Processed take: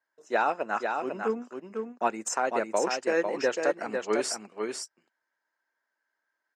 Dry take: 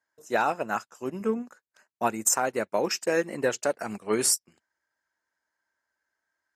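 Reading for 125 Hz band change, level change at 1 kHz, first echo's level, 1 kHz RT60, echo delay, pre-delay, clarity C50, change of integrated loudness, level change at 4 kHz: -8.5 dB, +0.5 dB, -5.0 dB, no reverb, 499 ms, no reverb, no reverb, -2.5 dB, -3.5 dB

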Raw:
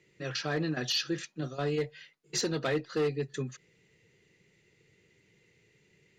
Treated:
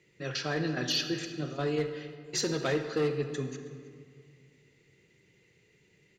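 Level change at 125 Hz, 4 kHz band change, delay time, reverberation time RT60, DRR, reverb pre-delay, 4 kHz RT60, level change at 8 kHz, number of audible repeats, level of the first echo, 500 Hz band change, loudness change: +0.5 dB, +0.5 dB, 319 ms, 2.0 s, 7.0 dB, 35 ms, 1.2 s, +0.5 dB, 1, -21.5 dB, +1.0 dB, +0.5 dB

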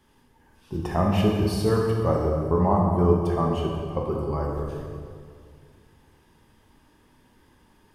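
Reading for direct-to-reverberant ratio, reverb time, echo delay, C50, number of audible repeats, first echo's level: -1.0 dB, 2.1 s, no echo, 1.0 dB, no echo, no echo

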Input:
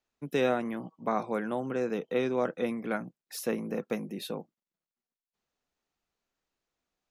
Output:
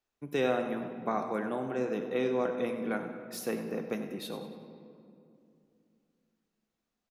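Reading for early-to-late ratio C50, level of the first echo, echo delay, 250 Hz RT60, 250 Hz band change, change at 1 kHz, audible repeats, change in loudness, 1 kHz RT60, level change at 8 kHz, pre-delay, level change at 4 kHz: 6.5 dB, -12.0 dB, 96 ms, 3.5 s, -1.5 dB, -1.0 dB, 1, -1.0 dB, 2.4 s, -2.0 dB, 3 ms, -1.5 dB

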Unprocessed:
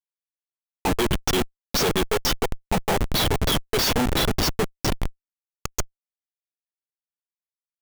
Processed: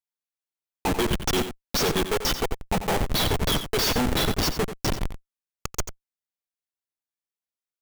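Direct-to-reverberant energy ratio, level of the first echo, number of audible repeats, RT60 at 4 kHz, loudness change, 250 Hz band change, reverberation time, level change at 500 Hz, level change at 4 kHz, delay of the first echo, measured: no reverb, -10.5 dB, 1, no reverb, -1.5 dB, -1.5 dB, no reverb, -1.5 dB, -1.5 dB, 89 ms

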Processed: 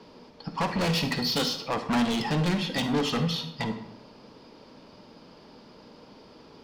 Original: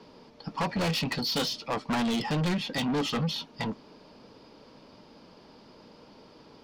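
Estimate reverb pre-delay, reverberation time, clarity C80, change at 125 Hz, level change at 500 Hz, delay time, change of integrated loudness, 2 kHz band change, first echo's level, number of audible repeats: 39 ms, 0.80 s, 11.5 dB, +2.5 dB, +2.5 dB, no echo, +2.0 dB, +2.0 dB, no echo, no echo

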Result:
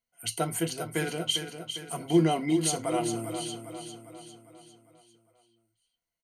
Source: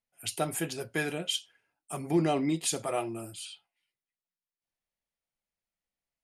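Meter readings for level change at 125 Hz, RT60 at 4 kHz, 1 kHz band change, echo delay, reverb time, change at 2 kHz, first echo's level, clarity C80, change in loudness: +4.0 dB, no reverb, +3.0 dB, 402 ms, no reverb, -0.5 dB, -8.5 dB, no reverb, +2.5 dB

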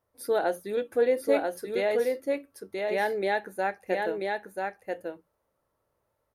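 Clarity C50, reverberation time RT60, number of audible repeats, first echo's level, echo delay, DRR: no reverb, no reverb, 1, -3.5 dB, 987 ms, no reverb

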